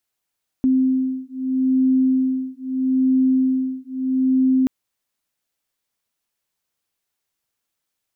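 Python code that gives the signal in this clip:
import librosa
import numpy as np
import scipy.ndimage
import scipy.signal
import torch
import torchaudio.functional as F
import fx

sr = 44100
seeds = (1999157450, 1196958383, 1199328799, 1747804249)

y = fx.two_tone_beats(sr, length_s=4.03, hz=260.0, beat_hz=0.78, level_db=-19.0)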